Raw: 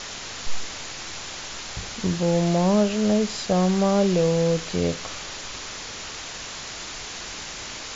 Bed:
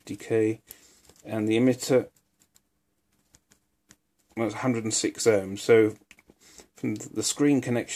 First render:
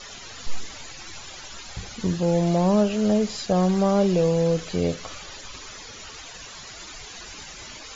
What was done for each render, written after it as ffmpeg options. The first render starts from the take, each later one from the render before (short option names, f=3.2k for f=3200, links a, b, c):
-af "afftdn=nr=14:nf=-36"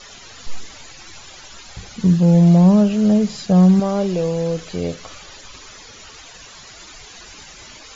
-filter_complex "[0:a]asettb=1/sr,asplit=3[a][b][c];[a]atrim=end=1.954[d];[b]atrim=start=1.95:end=3.8,asetpts=PTS-STARTPTS,afade=t=in:d=0.004:c=qsin,afade=t=out:st=1.846:d=0.004:c=qsin,equalizer=f=170:t=o:w=0.77:g=12.5[e];[c]atrim=start=3.796[f];[d][e]acrossfade=d=0.004:c1=hsin:c2=qsin[g];[g][f]acrossfade=d=0.004:c1=qsin:c2=hsin"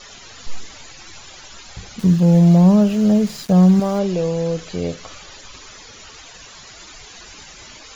-filter_complex "[0:a]asettb=1/sr,asplit=3[a][b][c];[a]atrim=end=1.994[d];[b]atrim=start=1.99:end=3.99,asetpts=PTS-STARTPTS,afade=t=in:d=0.004:c=qsin,afade=t=out:st=1.996:d=0.004:c=qsin,aeval=exprs='val(0)*gte(abs(val(0)),0.0211)':c=same[e];[c]atrim=start=3.986[f];[d][e]acrossfade=d=0.004:c1=hsin:c2=qsin[g];[g][f]acrossfade=d=0.004:c1=qsin:c2=hsin"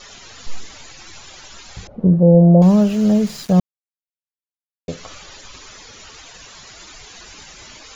-filter_complex "[0:a]asettb=1/sr,asplit=3[a][b][c];[a]atrim=end=1.874[d];[b]atrim=start=1.87:end=2.62,asetpts=PTS-STARTPTS,afade=t=in:d=0.004:c=qsin,afade=t=out:st=0.746:d=0.004:c=qsin,lowpass=f=560:t=q:w=3.3[e];[c]atrim=start=2.616[f];[d][e]acrossfade=d=0.004:c1=hsin:c2=qsin[g];[g][f]acrossfade=d=0.004:c1=qsin:c2=hsin,asplit=3[h][i][j];[h]atrim=end=3.6,asetpts=PTS-STARTPTS,afade=t=out:st=3.596:d=0.004:c=hsin[k];[i]atrim=start=3.6:end=4.88,asetpts=PTS-STARTPTS,volume=0[l];[j]atrim=start=4.88,asetpts=PTS-STARTPTS,afade=t=in:d=0.004:c=hsin[m];[k][l][m]concat=n=3:v=0:a=1"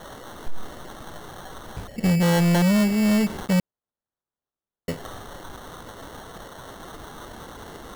-af "acrusher=samples=18:mix=1:aa=0.000001,asoftclip=type=tanh:threshold=-16.5dB"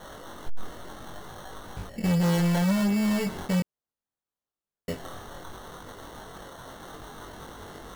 -af "flanger=delay=20:depth=3.1:speed=0.67,asoftclip=type=hard:threshold=-21dB"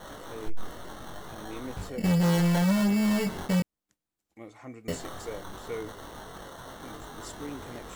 -filter_complex "[1:a]volume=-18dB[a];[0:a][a]amix=inputs=2:normalize=0"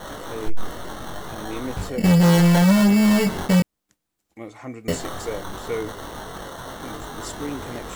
-af "volume=8.5dB"